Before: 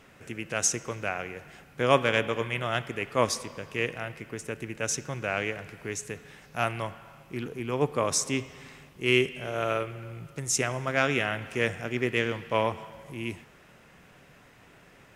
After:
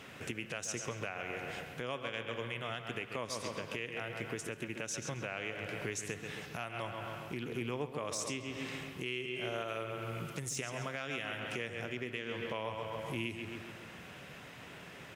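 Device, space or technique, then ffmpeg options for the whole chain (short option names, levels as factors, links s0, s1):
broadcast voice chain: -filter_complex "[0:a]asettb=1/sr,asplit=3[s0][s1][s2];[s0]atrim=end=9.684[s3];[s1]atrim=start=9.68:end=11.4,asetpts=PTS-STARTPTS,afade=t=in:d=0.004:c=qsin,afade=t=out:st=1.716:d=0.004:c=qsin,highshelf=f=5100:g=5.5[s4];[s2]atrim=start=11.396[s5];[s3][s4]acrossfade=d=0.004:c1=hsin:c2=qsin[s6];[s6][s5]acrossfade=d=0.004:c1=qsin:c2=hsin,highpass=72,asplit=2[s7][s8];[s8]adelay=134,lowpass=f=3400:p=1,volume=0.355,asplit=2[s9][s10];[s10]adelay=134,lowpass=f=3400:p=1,volume=0.51,asplit=2[s11][s12];[s12]adelay=134,lowpass=f=3400:p=1,volume=0.51,asplit=2[s13][s14];[s14]adelay=134,lowpass=f=3400:p=1,volume=0.51,asplit=2[s15][s16];[s16]adelay=134,lowpass=f=3400:p=1,volume=0.51,asplit=2[s17][s18];[s18]adelay=134,lowpass=f=3400:p=1,volume=0.51[s19];[s7][s9][s11][s13][s15][s17][s19]amix=inputs=7:normalize=0,deesser=0.5,acompressor=threshold=0.0112:ratio=4,equalizer=f=3200:t=o:w=0.97:g=5,alimiter=level_in=1.78:limit=0.0631:level=0:latency=1:release=219,volume=0.562,volume=1.5"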